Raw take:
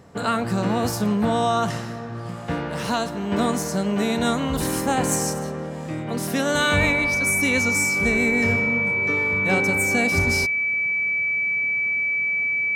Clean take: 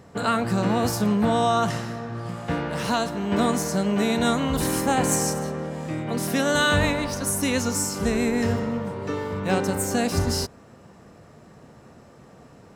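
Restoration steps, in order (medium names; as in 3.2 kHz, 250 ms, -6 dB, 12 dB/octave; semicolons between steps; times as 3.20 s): band-stop 2.3 kHz, Q 30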